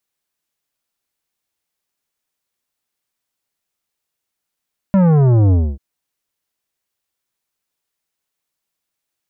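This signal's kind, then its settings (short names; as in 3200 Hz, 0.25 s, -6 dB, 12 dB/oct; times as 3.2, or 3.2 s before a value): sub drop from 200 Hz, over 0.84 s, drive 12 dB, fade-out 0.26 s, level -10 dB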